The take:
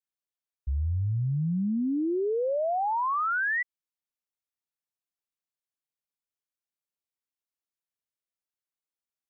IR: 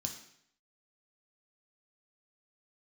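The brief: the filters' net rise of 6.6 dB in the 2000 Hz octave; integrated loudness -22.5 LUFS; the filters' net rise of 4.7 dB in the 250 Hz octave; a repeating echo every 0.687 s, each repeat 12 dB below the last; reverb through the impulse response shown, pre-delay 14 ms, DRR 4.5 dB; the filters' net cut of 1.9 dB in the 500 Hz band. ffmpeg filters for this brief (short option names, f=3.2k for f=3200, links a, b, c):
-filter_complex "[0:a]equalizer=f=250:t=o:g=7.5,equalizer=f=500:t=o:g=-5.5,equalizer=f=2k:t=o:g=8.5,aecho=1:1:687|1374|2061:0.251|0.0628|0.0157,asplit=2[a][b];[1:a]atrim=start_sample=2205,adelay=14[c];[b][c]afir=irnorm=-1:irlink=0,volume=-2.5dB[d];[a][d]amix=inputs=2:normalize=0"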